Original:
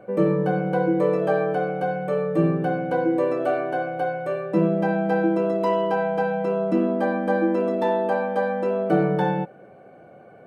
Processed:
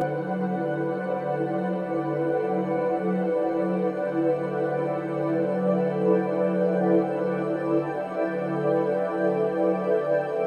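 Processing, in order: Paulstretch 27×, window 1.00 s, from 0.82 s; chorus voices 6, 0.3 Hz, delay 15 ms, depth 4.7 ms

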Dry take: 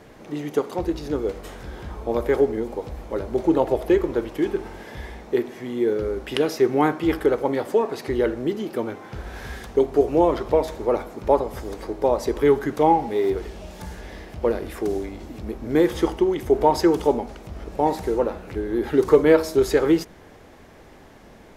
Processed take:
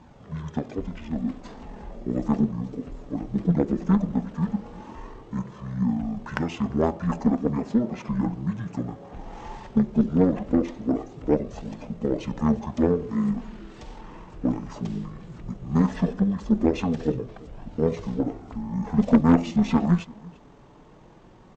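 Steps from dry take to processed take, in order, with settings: flange 0.17 Hz, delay 0.6 ms, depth 3.2 ms, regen -46%; delay 341 ms -22.5 dB; pitch shift -11 st; peaking EQ 730 Hz +4.5 dB 1.6 oct; Chebyshev shaper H 6 -15 dB, 8 -19 dB, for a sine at -5.5 dBFS

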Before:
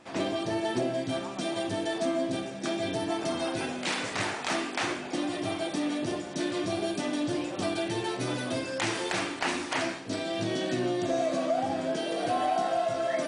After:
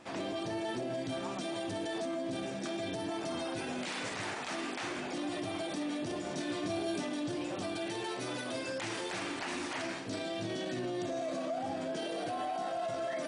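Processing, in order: 7.86–8.68 s: bass shelf 170 Hz -11.5 dB; peak limiter -29 dBFS, peak gain reduction 11.5 dB; 6.22–7.03 s: doubling 27 ms -5.5 dB

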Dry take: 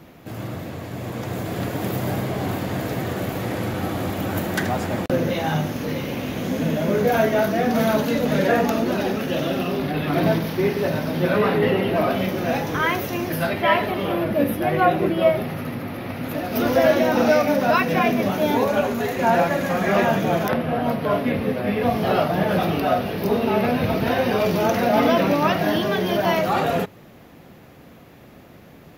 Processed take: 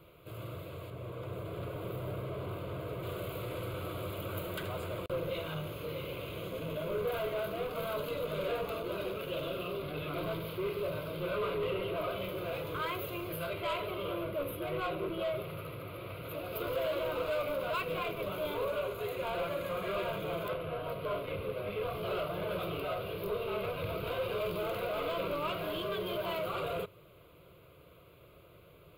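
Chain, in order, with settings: 0.90–3.03 s: treble shelf 2.8 kHz -9.5 dB; saturation -20 dBFS, distortion -10 dB; static phaser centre 1.2 kHz, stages 8; trim -7.5 dB

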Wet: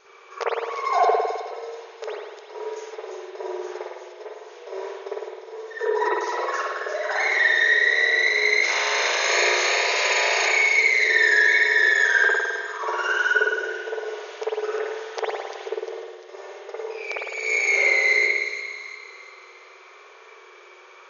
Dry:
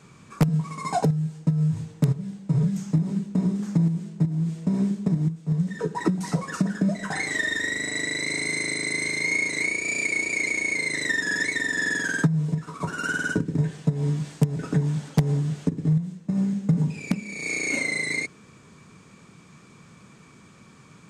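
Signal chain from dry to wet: 8.62–10.45 s: spectral peaks clipped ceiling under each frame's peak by 30 dB; on a send: feedback echo behind a high-pass 348 ms, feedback 46%, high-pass 3.3 kHz, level -6.5 dB; on the sum: FFT band-pass 350–6800 Hz; spring tank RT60 1.4 s, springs 52 ms, chirp 60 ms, DRR -8 dB

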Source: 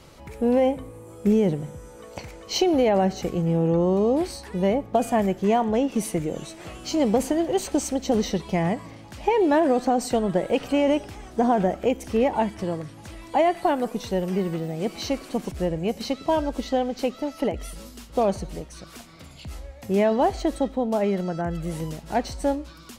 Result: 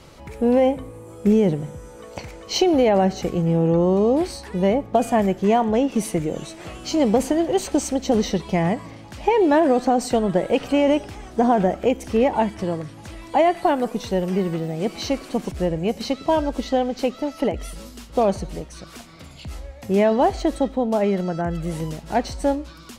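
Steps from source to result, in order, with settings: treble shelf 12 kHz -6 dB; trim +3 dB

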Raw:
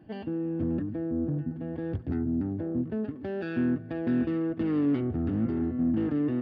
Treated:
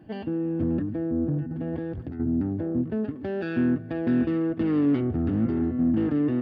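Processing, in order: 1.41–2.20 s: compressor with a negative ratio -35 dBFS, ratio -1; trim +3.5 dB

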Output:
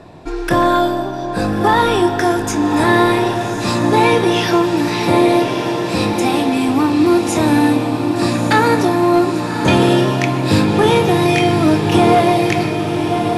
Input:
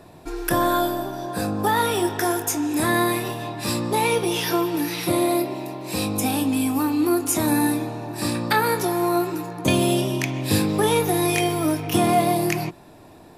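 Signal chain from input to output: 6.13–6.69 s: high-pass 280 Hz 6 dB/octave; hard clipper -13.5 dBFS, distortion -22 dB; distance through air 81 m; echo that smears into a reverb 1182 ms, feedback 56%, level -6 dB; trim +7.5 dB

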